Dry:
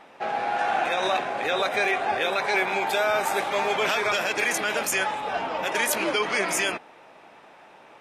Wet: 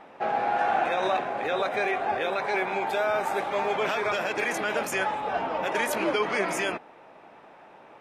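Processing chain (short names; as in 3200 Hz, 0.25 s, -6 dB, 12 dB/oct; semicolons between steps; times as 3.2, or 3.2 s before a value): high shelf 2400 Hz -11 dB; vocal rider 2 s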